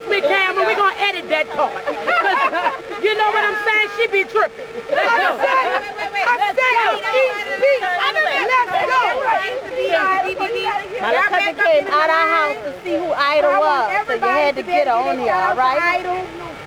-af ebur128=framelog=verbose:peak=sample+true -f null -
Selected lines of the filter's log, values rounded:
Integrated loudness:
  I:         -17.0 LUFS
  Threshold: -27.0 LUFS
Loudness range:
  LRA:         1.3 LU
  Threshold: -37.0 LUFS
  LRA low:   -17.5 LUFS
  LRA high:  -16.2 LUFS
Sample peak:
  Peak:       -3.9 dBFS
True peak:
  Peak:       -3.9 dBFS